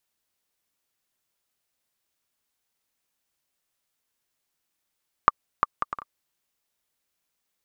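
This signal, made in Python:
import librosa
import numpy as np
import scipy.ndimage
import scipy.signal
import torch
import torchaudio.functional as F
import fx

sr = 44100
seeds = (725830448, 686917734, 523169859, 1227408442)

y = fx.bouncing_ball(sr, first_gap_s=0.35, ratio=0.55, hz=1180.0, decay_ms=26.0, level_db=-1.5)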